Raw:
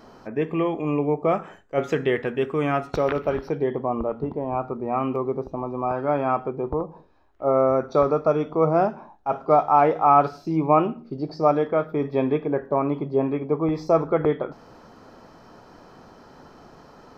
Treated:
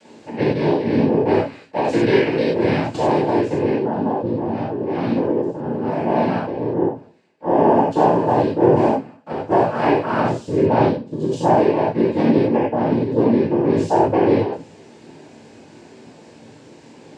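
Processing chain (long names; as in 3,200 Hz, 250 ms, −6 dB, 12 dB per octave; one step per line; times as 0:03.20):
flat-topped bell 1,000 Hz −14 dB 1.1 octaves
cochlear-implant simulation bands 8
reverb whose tail is shaped and stops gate 120 ms flat, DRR −6 dB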